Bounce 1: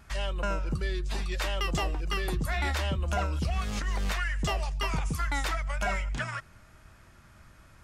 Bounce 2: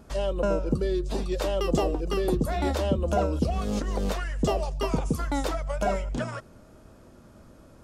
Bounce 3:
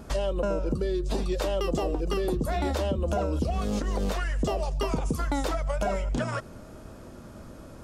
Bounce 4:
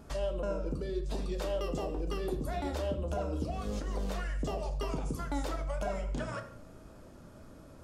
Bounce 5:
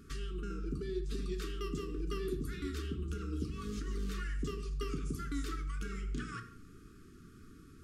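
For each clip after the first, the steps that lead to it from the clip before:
graphic EQ 250/500/2000 Hz +10/+12/-9 dB
in parallel at +1.5 dB: peak limiter -19 dBFS, peak gain reduction 7 dB; on the sum: compression 4:1, threshold -25 dBFS, peak gain reduction 9.5 dB
reverberation, pre-delay 7 ms, DRR 6.5 dB; trim -8.5 dB
brick-wall FIR band-stop 460–1100 Hz; hum notches 60/120 Hz; trim -2 dB

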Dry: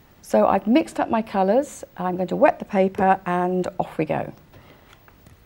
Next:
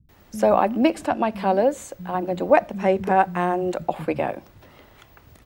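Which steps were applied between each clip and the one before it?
bands offset in time lows, highs 90 ms, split 190 Hz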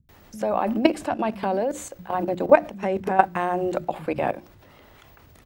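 level held to a coarse grid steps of 14 dB; hum notches 60/120/180/240/300/360 Hz; trim +5 dB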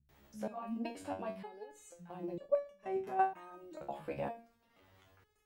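dynamic bell 1.7 kHz, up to -3 dB, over -32 dBFS, Q 0.77; resonator arpeggio 2.1 Hz 70–570 Hz; trim -5 dB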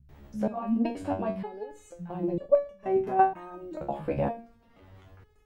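tilt EQ -2.5 dB/octave; trim +8 dB

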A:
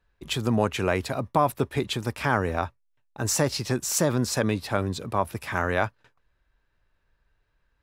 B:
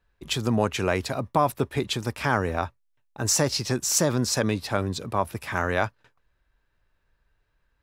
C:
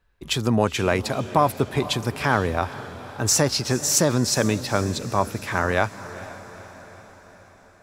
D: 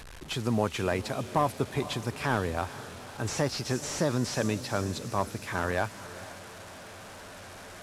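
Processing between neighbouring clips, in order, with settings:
dynamic bell 5.6 kHz, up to +5 dB, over -43 dBFS, Q 1.4
echo that smears into a reverb 466 ms, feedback 57%, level -15 dB; trim +3 dB
one-bit delta coder 64 kbps, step -32.5 dBFS; trim -7 dB

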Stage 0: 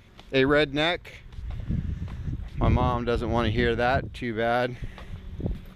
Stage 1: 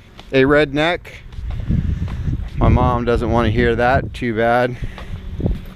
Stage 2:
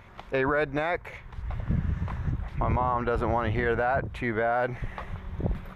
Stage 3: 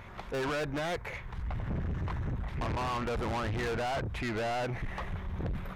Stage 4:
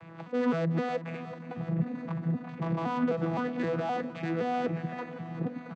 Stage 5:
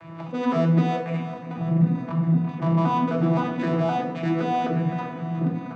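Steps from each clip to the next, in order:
dynamic bell 3.7 kHz, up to -6 dB, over -44 dBFS, Q 1.3; in parallel at 0 dB: gain riding within 3 dB 0.5 s; on the sum: trim +3.5 dB
FFT filter 170 Hz 0 dB, 280 Hz -3 dB, 950 Hz +10 dB, 2.2 kHz +3 dB, 3.4 kHz -5 dB; peak limiter -8 dBFS, peak gain reduction 10 dB; trim -8.5 dB
saturation -33.5 dBFS, distortion -5 dB; trim +3 dB
vocoder on a broken chord bare fifth, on E3, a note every 259 ms; feedback delay 364 ms, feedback 60%, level -13 dB; trim +4.5 dB
simulated room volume 710 m³, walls furnished, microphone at 2.7 m; trim +3 dB

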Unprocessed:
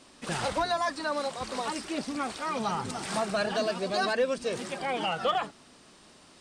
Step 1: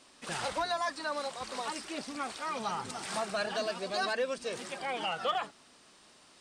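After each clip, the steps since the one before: bass shelf 420 Hz -8 dB; trim -2.5 dB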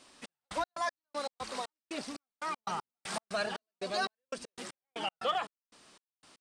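trance gate "xx..x.x..x.xx.." 118 bpm -60 dB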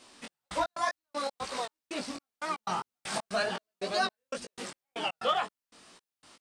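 chorus 2 Hz, delay 16 ms, depth 6.1 ms; trim +6.5 dB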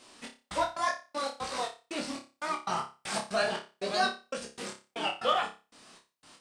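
flutter echo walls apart 5.1 m, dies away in 0.3 s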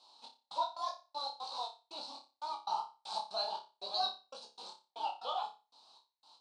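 two resonant band-passes 1.9 kHz, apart 2.2 oct; trim +2.5 dB

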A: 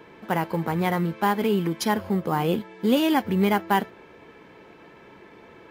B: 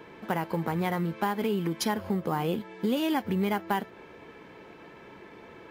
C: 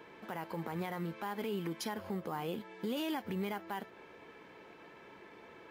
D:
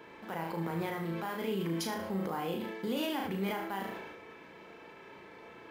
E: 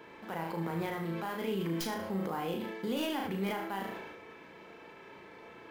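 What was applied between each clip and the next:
compression 3:1, threshold -26 dBFS, peak gain reduction 8.5 dB
bass shelf 270 Hz -7 dB; peak limiter -23.5 dBFS, peak gain reduction 9 dB; trim -4.5 dB
flutter echo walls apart 6.2 m, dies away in 0.46 s; decay stretcher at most 36 dB/s; trim +1 dB
tracing distortion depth 0.061 ms

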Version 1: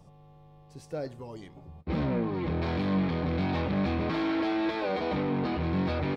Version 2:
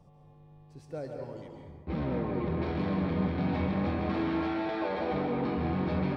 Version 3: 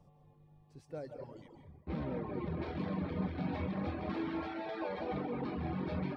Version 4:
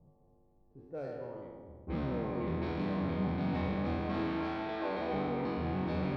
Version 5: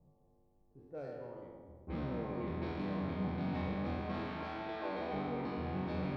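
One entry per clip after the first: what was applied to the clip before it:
treble shelf 3.4 kHz -8 dB; plate-style reverb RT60 1.5 s, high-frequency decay 0.55×, pre-delay 120 ms, DRR 1.5 dB; trim -3.5 dB
reverb removal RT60 1.1 s; trim -4.5 dB
spectral sustain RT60 2.04 s; level-controlled noise filter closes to 510 Hz, open at -31 dBFS; hum notches 50/100/150 Hz
de-hum 54.39 Hz, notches 10; trim -3.5 dB

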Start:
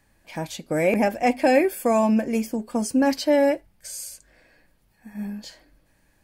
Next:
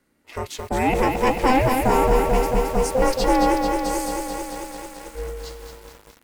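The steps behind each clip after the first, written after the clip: ring modulator 260 Hz; waveshaping leveller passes 1; bit-crushed delay 220 ms, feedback 80%, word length 7-bit, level -4.5 dB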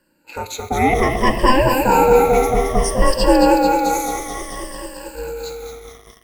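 drifting ripple filter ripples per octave 1.3, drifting -0.6 Hz, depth 17 dB; reverberation RT60 0.95 s, pre-delay 18 ms, DRR 12.5 dB; trim +1 dB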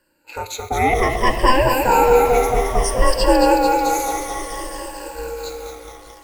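peaking EQ 200 Hz -9.5 dB 0.98 oct; shuffle delay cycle 789 ms, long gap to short 3:1, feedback 51%, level -19 dB

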